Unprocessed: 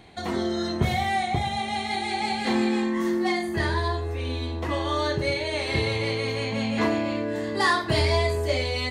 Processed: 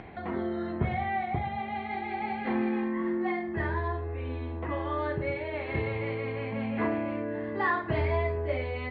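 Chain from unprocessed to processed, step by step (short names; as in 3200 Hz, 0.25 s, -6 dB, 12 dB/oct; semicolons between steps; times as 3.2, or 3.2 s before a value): LPF 2300 Hz 24 dB/oct; upward compressor, threshold -31 dBFS; gain -5 dB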